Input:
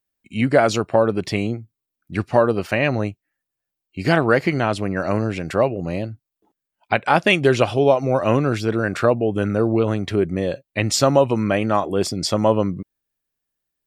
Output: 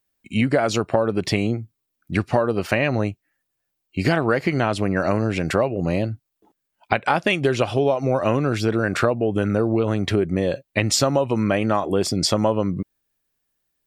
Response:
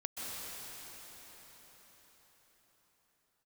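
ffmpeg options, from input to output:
-af "acompressor=threshold=-22dB:ratio=5,volume=5.5dB"

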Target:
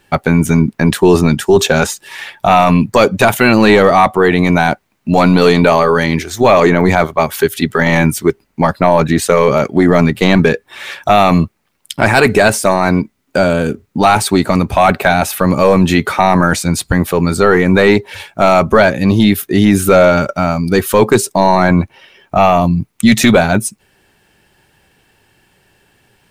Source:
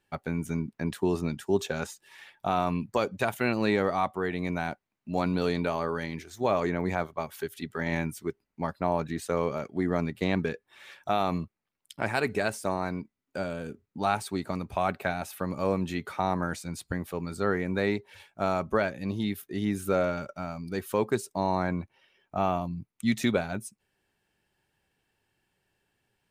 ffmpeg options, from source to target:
ffmpeg -i in.wav -af "apsyclip=24dB,volume=-2dB" out.wav

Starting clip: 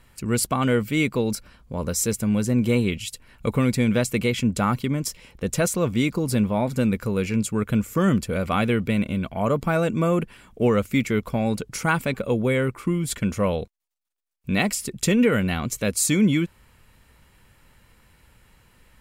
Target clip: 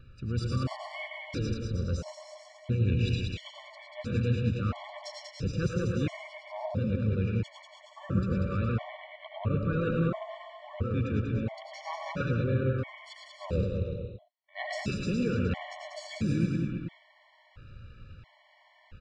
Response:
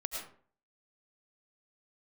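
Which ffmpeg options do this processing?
-filter_complex "[0:a]lowpass=frequency=4500:width=0.5412,lowpass=frequency=4500:width=1.3066,equalizer=frequency=100:width_type=o:width=1.2:gain=13,areverse,acompressor=threshold=-25dB:ratio=20,areverse,asplit=2[link_01][link_02];[link_02]asetrate=33038,aresample=44100,atempo=1.33484,volume=-10dB[link_03];[link_01][link_03]amix=inputs=2:normalize=0,aecho=1:1:190|323|416.1|481.3|526.9:0.631|0.398|0.251|0.158|0.1[link_04];[1:a]atrim=start_sample=2205,afade=type=out:start_time=0.17:duration=0.01,atrim=end_sample=7938[link_05];[link_04][link_05]afir=irnorm=-1:irlink=0,afftfilt=real='re*gt(sin(2*PI*0.74*pts/sr)*(1-2*mod(floor(b*sr/1024/580),2)),0)':imag='im*gt(sin(2*PI*0.74*pts/sr)*(1-2*mod(floor(b*sr/1024/580),2)),0)':win_size=1024:overlap=0.75"

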